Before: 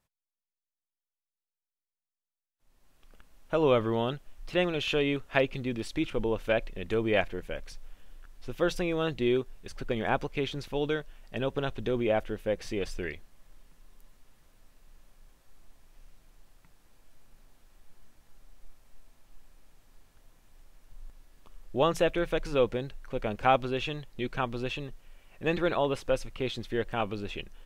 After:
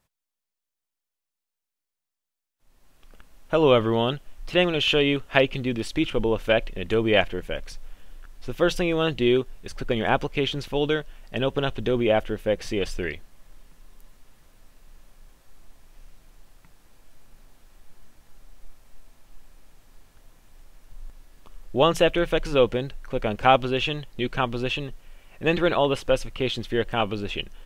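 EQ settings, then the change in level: dynamic bell 3 kHz, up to +7 dB, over -54 dBFS, Q 6; +6.0 dB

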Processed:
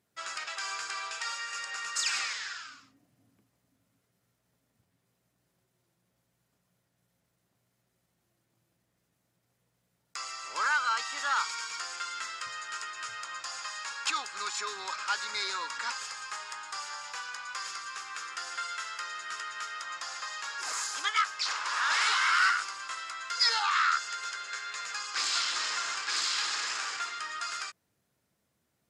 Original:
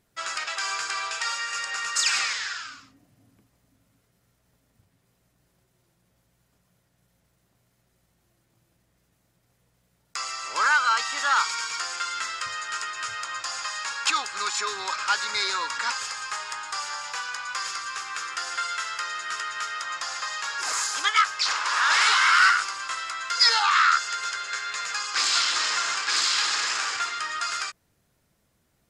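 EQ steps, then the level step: high-pass 90 Hz; hum notches 50/100/150 Hz; -7.0 dB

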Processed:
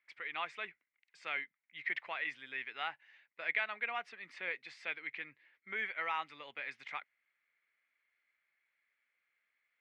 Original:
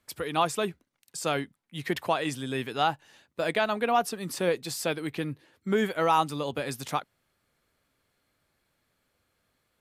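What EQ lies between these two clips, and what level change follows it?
band-pass filter 2.1 kHz, Q 6; distance through air 120 m; +5.5 dB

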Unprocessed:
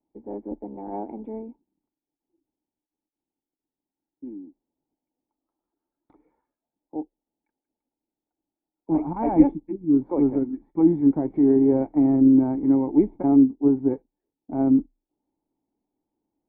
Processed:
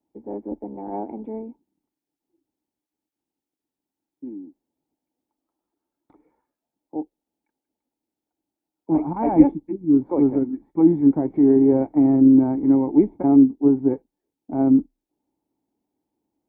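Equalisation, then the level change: high-pass 48 Hz; +2.5 dB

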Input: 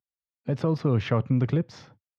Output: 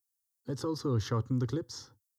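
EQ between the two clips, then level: tone controls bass +7 dB, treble +13 dB; treble shelf 3 kHz +7 dB; static phaser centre 650 Hz, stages 6; -6.0 dB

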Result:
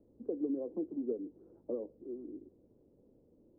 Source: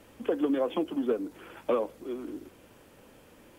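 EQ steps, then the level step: four-pole ladder low-pass 520 Hz, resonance 30%; -3.0 dB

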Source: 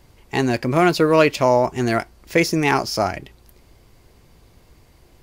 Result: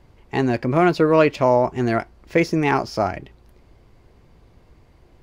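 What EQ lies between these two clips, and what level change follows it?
low-pass 1.9 kHz 6 dB/octave; 0.0 dB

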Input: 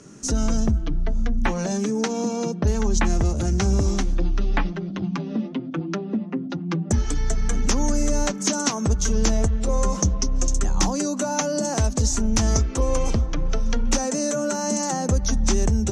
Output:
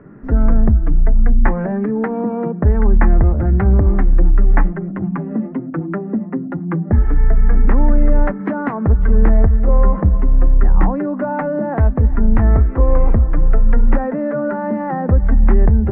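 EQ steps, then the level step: elliptic low-pass 1.9 kHz, stop band 80 dB; bass shelf 77 Hz +8.5 dB; +5.0 dB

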